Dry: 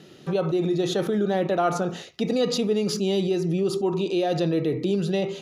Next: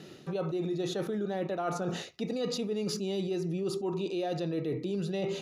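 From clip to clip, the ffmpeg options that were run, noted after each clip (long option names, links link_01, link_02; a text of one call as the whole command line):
ffmpeg -i in.wav -af "bandreject=frequency=3200:width=17,areverse,acompressor=threshold=-30dB:ratio=6,areverse" out.wav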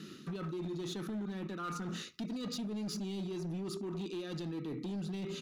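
ffmpeg -i in.wav -af "firequalizer=gain_entry='entry(120,0);entry(210,11);entry(700,-16);entry(1200,9);entry(1900,3);entry(3500,6)':delay=0.05:min_phase=1,acompressor=threshold=-32dB:ratio=2.5,volume=30dB,asoftclip=hard,volume=-30dB,volume=-5dB" out.wav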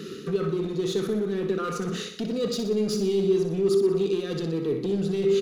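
ffmpeg -i in.wav -filter_complex "[0:a]superequalizer=7b=3.98:9b=0.562,asplit=2[link_01][link_02];[link_02]aecho=0:1:61|122|183|244|305|366|427:0.398|0.219|0.12|0.0662|0.0364|0.02|0.011[link_03];[link_01][link_03]amix=inputs=2:normalize=0,volume=8.5dB" out.wav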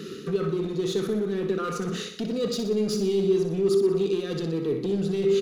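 ffmpeg -i in.wav -af anull out.wav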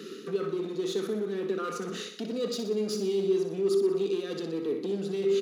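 ffmpeg -i in.wav -af "highpass=frequency=210:width=0.5412,highpass=frequency=210:width=1.3066,volume=-3.5dB" out.wav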